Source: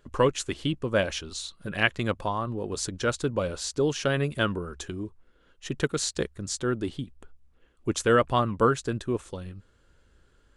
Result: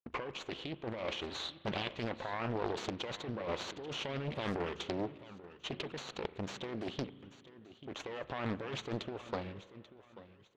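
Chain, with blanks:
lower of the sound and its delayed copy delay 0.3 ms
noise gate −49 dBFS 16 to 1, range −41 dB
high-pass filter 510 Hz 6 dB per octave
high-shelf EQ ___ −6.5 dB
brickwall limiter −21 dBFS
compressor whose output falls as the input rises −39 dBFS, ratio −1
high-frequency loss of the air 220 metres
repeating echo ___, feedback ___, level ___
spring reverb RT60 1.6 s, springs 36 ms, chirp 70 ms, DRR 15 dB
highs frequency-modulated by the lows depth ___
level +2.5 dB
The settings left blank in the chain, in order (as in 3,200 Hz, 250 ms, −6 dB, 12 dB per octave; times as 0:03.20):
9,100 Hz, 837 ms, 33%, −16.5 dB, 0.87 ms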